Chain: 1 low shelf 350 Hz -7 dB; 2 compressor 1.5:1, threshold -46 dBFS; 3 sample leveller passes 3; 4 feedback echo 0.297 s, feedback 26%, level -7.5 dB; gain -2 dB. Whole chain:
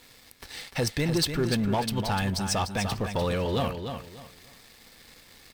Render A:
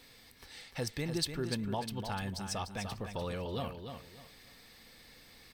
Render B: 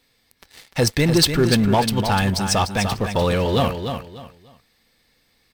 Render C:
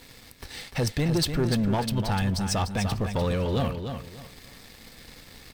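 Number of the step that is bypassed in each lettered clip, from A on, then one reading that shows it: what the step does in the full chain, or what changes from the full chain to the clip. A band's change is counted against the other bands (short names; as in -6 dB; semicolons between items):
3, crest factor change +9.0 dB; 2, mean gain reduction 6.5 dB; 1, 125 Hz band +4.5 dB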